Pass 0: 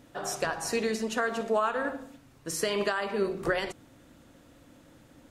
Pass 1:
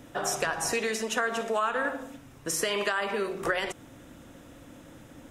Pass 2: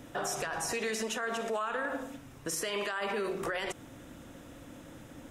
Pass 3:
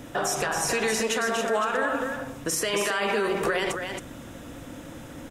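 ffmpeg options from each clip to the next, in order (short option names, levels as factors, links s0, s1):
-filter_complex "[0:a]equalizer=f=4400:w=7.6:g=-10,acrossover=split=400|1200[s0][s1][s2];[s0]acompressor=threshold=0.00501:ratio=4[s3];[s1]acompressor=threshold=0.0126:ratio=4[s4];[s2]acompressor=threshold=0.02:ratio=4[s5];[s3][s4][s5]amix=inputs=3:normalize=0,volume=2.11"
-af "alimiter=level_in=1.12:limit=0.0631:level=0:latency=1:release=48,volume=0.891"
-af "aecho=1:1:273:0.501,volume=2.37"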